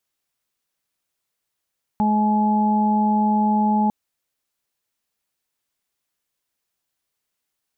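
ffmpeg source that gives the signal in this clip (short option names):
-f lavfi -i "aevalsrc='0.133*sin(2*PI*212*t)+0.0168*sin(2*PI*424*t)+0.0188*sin(2*PI*636*t)+0.106*sin(2*PI*848*t)':d=1.9:s=44100"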